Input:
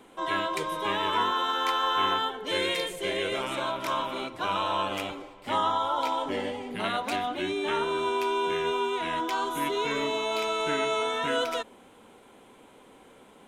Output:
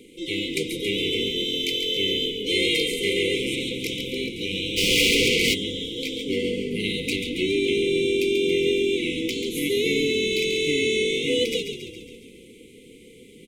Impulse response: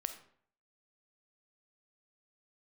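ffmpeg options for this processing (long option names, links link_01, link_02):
-filter_complex "[0:a]asplit=8[link_01][link_02][link_03][link_04][link_05][link_06][link_07][link_08];[link_02]adelay=138,afreqshift=-44,volume=-8dB[link_09];[link_03]adelay=276,afreqshift=-88,volume=-12.9dB[link_10];[link_04]adelay=414,afreqshift=-132,volume=-17.8dB[link_11];[link_05]adelay=552,afreqshift=-176,volume=-22.6dB[link_12];[link_06]adelay=690,afreqshift=-220,volume=-27.5dB[link_13];[link_07]adelay=828,afreqshift=-264,volume=-32.4dB[link_14];[link_08]adelay=966,afreqshift=-308,volume=-37.3dB[link_15];[link_01][link_09][link_10][link_11][link_12][link_13][link_14][link_15]amix=inputs=8:normalize=0,asplit=3[link_16][link_17][link_18];[link_16]afade=type=out:start_time=4.76:duration=0.02[link_19];[link_17]asplit=2[link_20][link_21];[link_21]highpass=frequency=720:poles=1,volume=36dB,asoftclip=type=tanh:threshold=-16dB[link_22];[link_20][link_22]amix=inputs=2:normalize=0,lowpass=frequency=5500:poles=1,volume=-6dB,afade=type=in:start_time=4.76:duration=0.02,afade=type=out:start_time=5.53:duration=0.02[link_23];[link_18]afade=type=in:start_time=5.53:duration=0.02[link_24];[link_19][link_23][link_24]amix=inputs=3:normalize=0,afftfilt=real='re*(1-between(b*sr/4096,520,2000))':imag='im*(1-between(b*sr/4096,520,2000))':win_size=4096:overlap=0.75,volume=7dB"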